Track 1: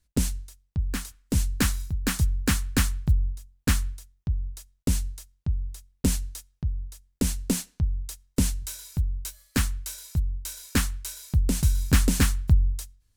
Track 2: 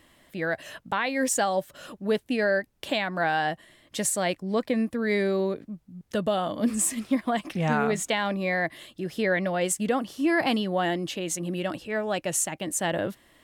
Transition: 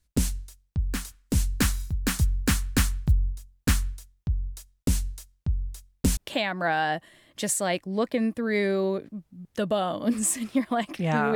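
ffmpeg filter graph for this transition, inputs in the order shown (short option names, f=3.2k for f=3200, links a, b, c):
-filter_complex "[0:a]apad=whole_dur=11.35,atrim=end=11.35,atrim=end=6.172[a];[1:a]atrim=start=2.728:end=7.91[b];[a][b]acrossfade=d=0.004:c1=hsin:c2=hsin"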